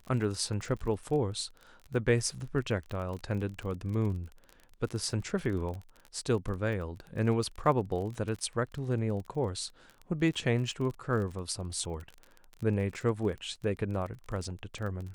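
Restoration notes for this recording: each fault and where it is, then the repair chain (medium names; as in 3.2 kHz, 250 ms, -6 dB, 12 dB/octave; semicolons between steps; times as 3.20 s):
crackle 28 per s -37 dBFS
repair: de-click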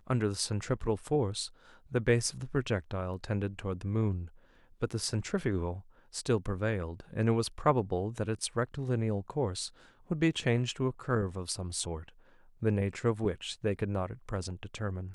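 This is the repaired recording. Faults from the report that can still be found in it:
nothing left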